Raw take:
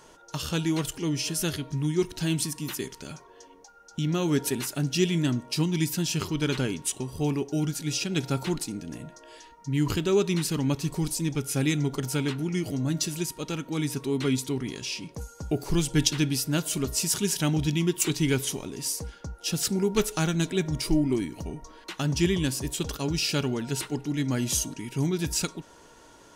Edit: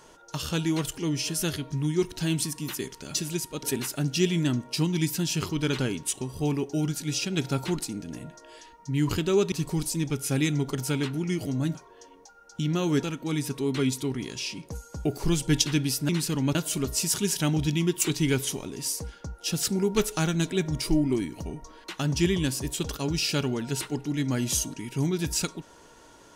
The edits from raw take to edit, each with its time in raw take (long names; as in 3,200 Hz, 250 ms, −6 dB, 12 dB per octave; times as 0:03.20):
0:03.14–0:04.42: swap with 0:13.00–0:13.49
0:10.31–0:10.77: move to 0:16.55